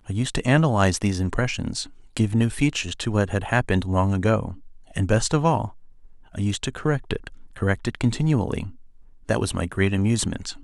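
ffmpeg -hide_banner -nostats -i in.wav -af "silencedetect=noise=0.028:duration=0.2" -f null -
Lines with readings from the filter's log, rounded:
silence_start: 1.86
silence_end: 2.17 | silence_duration: 0.31
silence_start: 4.53
silence_end: 4.96 | silence_duration: 0.43
silence_start: 5.68
silence_end: 6.35 | silence_duration: 0.67
silence_start: 7.27
silence_end: 7.56 | silence_duration: 0.29
silence_start: 8.70
silence_end: 9.29 | silence_duration: 0.59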